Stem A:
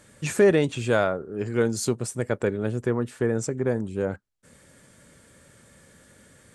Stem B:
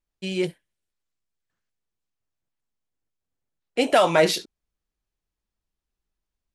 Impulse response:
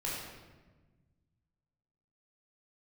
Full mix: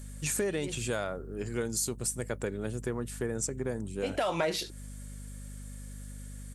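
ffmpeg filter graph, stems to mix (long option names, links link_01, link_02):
-filter_complex "[0:a]aemphasis=mode=production:type=75fm,volume=-13dB,asplit=2[link_01][link_02];[1:a]adelay=250,volume=-5dB[link_03];[link_02]apad=whole_len=299811[link_04];[link_03][link_04]sidechaincompress=threshold=-49dB:ratio=5:attack=16:release=253[link_05];[link_01][link_05]amix=inputs=2:normalize=0,acontrast=68,aeval=exprs='val(0)+0.00794*(sin(2*PI*50*n/s)+sin(2*PI*2*50*n/s)/2+sin(2*PI*3*50*n/s)/3+sin(2*PI*4*50*n/s)/4+sin(2*PI*5*50*n/s)/5)':channel_layout=same,acompressor=threshold=-28dB:ratio=5"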